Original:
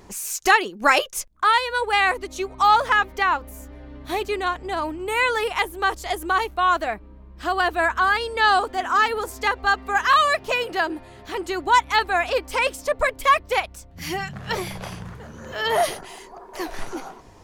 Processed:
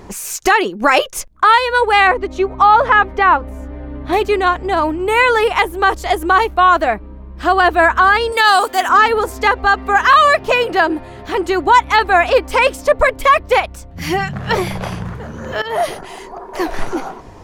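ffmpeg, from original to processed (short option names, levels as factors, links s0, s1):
-filter_complex "[0:a]asettb=1/sr,asplit=3[s0][s1][s2];[s0]atrim=end=2.074[s3];[s1]atrim=start=2.07:end=4.13,asetpts=PTS-STARTPTS,afade=t=in:d=0.004:c=qsin,afade=t=out:st=2.056:d=0.004:c=qsin,aemphasis=mode=reproduction:type=75fm[s4];[s2]atrim=start=4.126[s5];[s3][s4]acrossfade=d=0.004:c1=hsin:c2=qsin[s6];[s6][s5]acrossfade=d=0.004:c1=qsin:c2=hsin,asettb=1/sr,asplit=3[s7][s8][s9];[s7]atrim=end=8.324[s10];[s8]atrim=start=8.32:end=8.89,asetpts=PTS-STARTPTS,afade=t=in:d=0.004:c=qsin,afade=t=out:st=0.566:d=0.004:c=qsin,aemphasis=mode=production:type=riaa[s11];[s9]atrim=start=8.886[s12];[s10][s11]acrossfade=d=0.004:c1=hsin:c2=qsin[s13];[s13][s12]acrossfade=d=0.004:c1=qsin:c2=hsin,asplit=2[s14][s15];[s14]atrim=end=15.62,asetpts=PTS-STARTPTS,afade=t=out:st=15.616:d=0.004:c=hsin:silence=0.177828[s16];[s15]atrim=start=15.62,asetpts=PTS-STARTPTS,afade=t=in:d=0.62:silence=0.177828[s17];[s16][s17]concat=n=2:v=0:a=1,highshelf=f=2900:g=-8,alimiter=level_in=3.98:limit=0.891:release=50:level=0:latency=1,volume=0.891"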